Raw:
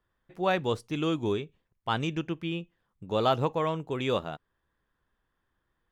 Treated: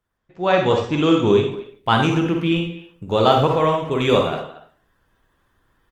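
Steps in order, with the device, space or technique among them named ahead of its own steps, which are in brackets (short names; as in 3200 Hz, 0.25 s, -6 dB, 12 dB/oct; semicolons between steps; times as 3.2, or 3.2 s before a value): 2.02–2.46 dynamic EQ 3400 Hz, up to -5 dB, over -50 dBFS, Q 2.6; speakerphone in a meeting room (reverb RT60 0.40 s, pre-delay 38 ms, DRR 2.5 dB; speakerphone echo 0.23 s, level -16 dB; AGC gain up to 12 dB; Opus 24 kbps 48000 Hz)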